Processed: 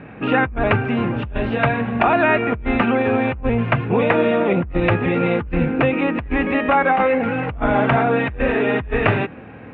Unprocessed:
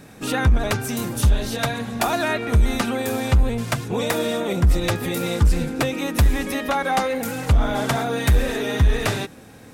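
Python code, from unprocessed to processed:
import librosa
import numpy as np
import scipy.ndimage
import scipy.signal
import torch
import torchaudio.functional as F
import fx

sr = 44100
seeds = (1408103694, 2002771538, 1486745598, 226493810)

y = scipy.signal.sosfilt(scipy.signal.ellip(4, 1.0, 70, 2700.0, 'lowpass', fs=sr, output='sos'), x)
y = fx.over_compress(y, sr, threshold_db=-21.0, ratio=-0.5)
y = scipy.signal.sosfilt(scipy.signal.butter(2, 42.0, 'highpass', fs=sr, output='sos'), y)
y = F.gain(torch.from_numpy(y), 5.0).numpy()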